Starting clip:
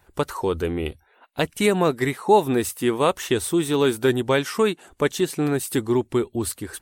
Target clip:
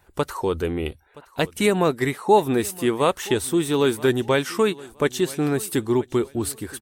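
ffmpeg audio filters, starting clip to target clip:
-af "aecho=1:1:972|1944:0.0891|0.0241"

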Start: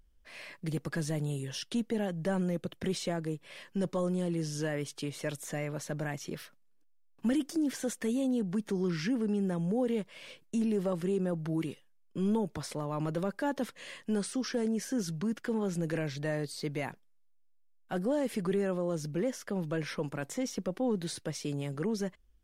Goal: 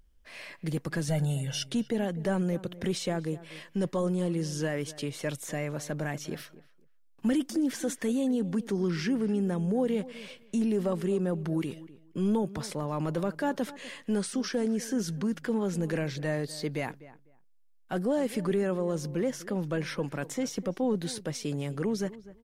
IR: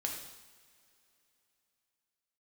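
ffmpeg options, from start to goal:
-filter_complex "[0:a]asettb=1/sr,asplit=3[a][b][c];[a]atrim=end=1.084[d];[b]atrim=start=1.08:end=1.67,asetpts=PTS-STARTPTS,afade=t=in:d=0.004:c=qsin,afade=t=out:st=0.586:d=0.004:c=qsin,aecho=1:1:1.4:0.88,atrim=end_sample=26019[e];[c]atrim=start=1.666[f];[d][e]acrossfade=d=0.004:c1=hsin:c2=qsin[g];[g][f]acrossfade=d=0.004:c1=qsin:c2=hsin,asplit=2[h][i];[i]adelay=250,lowpass=f=1.9k:p=1,volume=-17dB,asplit=2[j][k];[k]adelay=250,lowpass=f=1.9k:p=1,volume=0.19[l];[h][j][l]amix=inputs=3:normalize=0,volume=2.5dB"

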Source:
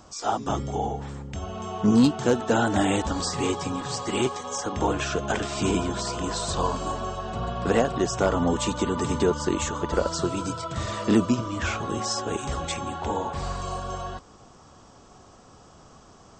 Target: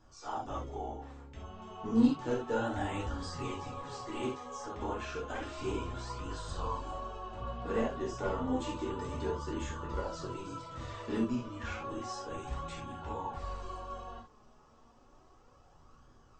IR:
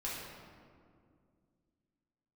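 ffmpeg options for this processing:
-filter_complex "[0:a]lowpass=f=3.3k:p=1[a];[1:a]atrim=start_sample=2205,atrim=end_sample=4410,asetrate=48510,aresample=44100[b];[a][b]afir=irnorm=-1:irlink=0,flanger=delay=0.6:depth=4.2:regen=54:speed=0.31:shape=sinusoidal,volume=-6dB"

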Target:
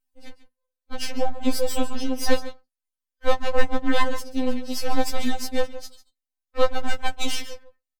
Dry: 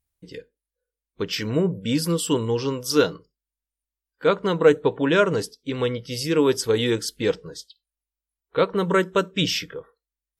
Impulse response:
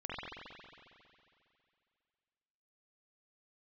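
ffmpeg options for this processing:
-af "aecho=1:1:190:0.178,atempo=1.3,aeval=exprs='max(val(0),0)':c=same,afftfilt=real='re*3.46*eq(mod(b,12),0)':imag='im*3.46*eq(mod(b,12),0)':win_size=2048:overlap=0.75,volume=4dB"

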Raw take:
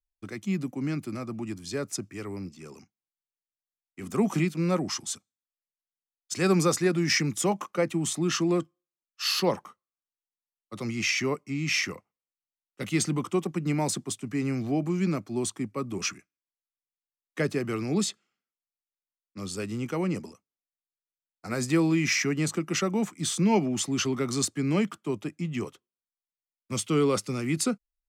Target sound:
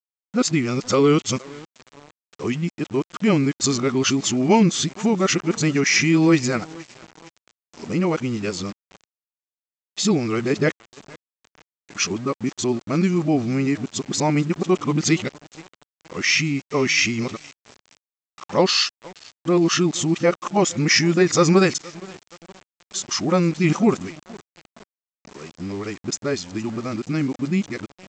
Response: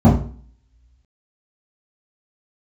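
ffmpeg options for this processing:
-af "areverse,aecho=1:1:467|934|1401|1868:0.0794|0.0421|0.0223|0.0118,aresample=16000,aeval=exprs='val(0)*gte(abs(val(0)),0.00596)':c=same,aresample=44100,lowshelf=f=63:g=-9,volume=8dB"

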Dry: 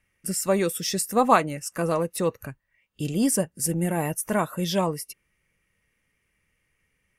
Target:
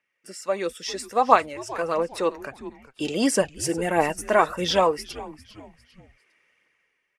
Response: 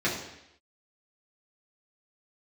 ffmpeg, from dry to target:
-filter_complex "[0:a]highpass=410,lowpass=5k,dynaudnorm=f=170:g=9:m=13.5dB,asplit=4[a][b][c][d];[b]adelay=401,afreqshift=-140,volume=-17dB[e];[c]adelay=802,afreqshift=-280,volume=-25.6dB[f];[d]adelay=1203,afreqshift=-420,volume=-34.3dB[g];[a][e][f][g]amix=inputs=4:normalize=0,aphaser=in_gain=1:out_gain=1:delay=3.3:decay=0.34:speed=1.5:type=triangular,volume=-3.5dB"

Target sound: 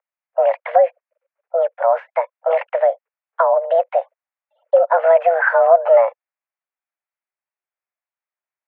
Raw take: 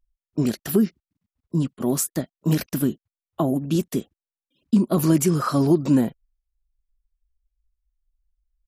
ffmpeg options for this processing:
-filter_complex "[0:a]asplit=2[a][b];[b]alimiter=limit=-15dB:level=0:latency=1:release=214,volume=-1dB[c];[a][c]amix=inputs=2:normalize=0,highpass=f=210:t=q:w=0.5412,highpass=f=210:t=q:w=1.307,lowpass=f=2.1k:t=q:w=0.5176,lowpass=f=2.1k:t=q:w=0.7071,lowpass=f=2.1k:t=q:w=1.932,afreqshift=330,volume=4dB"

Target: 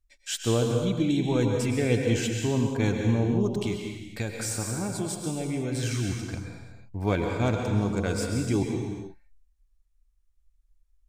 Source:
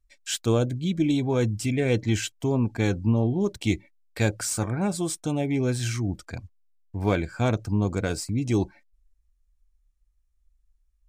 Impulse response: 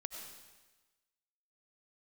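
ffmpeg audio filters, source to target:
-filter_complex "[0:a]asettb=1/sr,asplit=3[a][b][c];[a]atrim=end=3.514[d];[b]atrim=start=3.51:end=5.75,asetpts=PTS-STARTPTS,afade=t=in:d=0.004:c=qsin,afade=t=out:st=2.236:d=0.004:c=qsin,acompressor=threshold=-25dB:ratio=6[e];[c]atrim=start=5.746[f];[d][e]acrossfade=d=0.004:c1=hsin:c2=qsin[g];[g][f]acrossfade=d=0.004:c1=qsin:c2=hsin[h];[1:a]atrim=start_sample=2205,afade=t=out:st=0.43:d=0.01,atrim=end_sample=19404,asetrate=33075,aresample=44100[i];[h][i]afir=irnorm=-1:irlink=0"

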